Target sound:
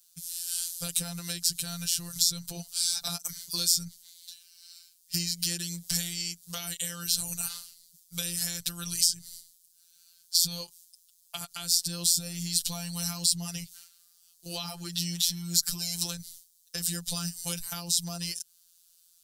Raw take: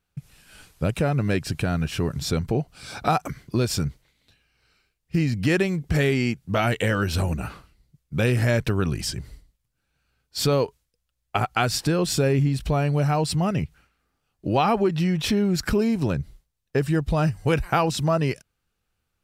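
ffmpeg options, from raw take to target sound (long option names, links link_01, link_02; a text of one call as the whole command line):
ffmpeg -i in.wav -filter_complex "[0:a]tiltshelf=frequency=1400:gain=-7,afftfilt=real='hypot(re,im)*cos(PI*b)':imag='0':win_size=1024:overlap=0.75,equalizer=frequency=290:width_type=o:width=0.91:gain=-13,acrossover=split=290[link_01][link_02];[link_02]acompressor=threshold=-40dB:ratio=6[link_03];[link_01][link_03]amix=inputs=2:normalize=0,aexciter=amount=10.8:drive=3.6:freq=3500,volume=-1.5dB" out.wav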